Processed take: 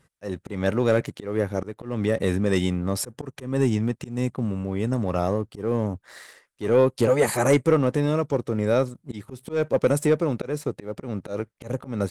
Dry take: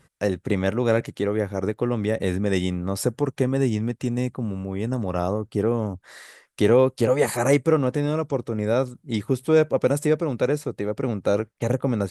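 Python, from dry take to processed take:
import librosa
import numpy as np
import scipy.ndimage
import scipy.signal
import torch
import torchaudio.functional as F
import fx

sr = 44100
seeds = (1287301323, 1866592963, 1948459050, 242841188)

y = fx.leveller(x, sr, passes=1)
y = fx.auto_swell(y, sr, attack_ms=197.0)
y = y * librosa.db_to_amplitude(-2.5)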